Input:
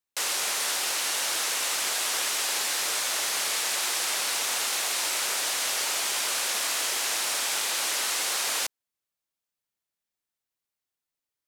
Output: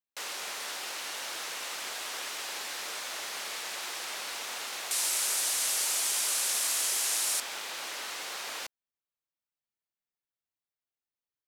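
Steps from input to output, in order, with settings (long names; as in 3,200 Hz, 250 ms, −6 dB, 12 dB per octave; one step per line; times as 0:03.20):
parametric band 9,900 Hz −6.5 dB 1.6 octaves, from 0:04.91 +9 dB, from 0:07.40 −8.5 dB
level −7 dB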